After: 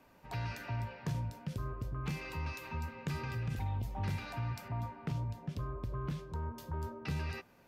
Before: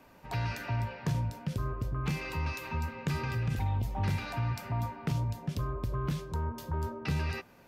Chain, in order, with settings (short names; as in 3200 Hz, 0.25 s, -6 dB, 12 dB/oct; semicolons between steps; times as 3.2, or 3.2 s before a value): 4.68–6.43 high shelf 5100 Hz -8 dB; gain -5.5 dB